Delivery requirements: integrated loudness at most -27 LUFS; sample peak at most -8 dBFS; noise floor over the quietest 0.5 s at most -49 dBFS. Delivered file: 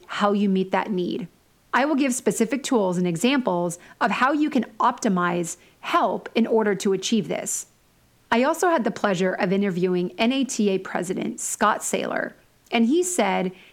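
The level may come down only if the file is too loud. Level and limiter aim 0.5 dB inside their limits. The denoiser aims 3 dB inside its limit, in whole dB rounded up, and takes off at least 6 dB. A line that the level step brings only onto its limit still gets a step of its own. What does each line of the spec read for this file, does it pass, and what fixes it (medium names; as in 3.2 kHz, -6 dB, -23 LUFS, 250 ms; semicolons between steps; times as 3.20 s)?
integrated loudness -23.0 LUFS: fail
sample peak -6.0 dBFS: fail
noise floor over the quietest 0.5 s -59 dBFS: pass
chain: trim -4.5 dB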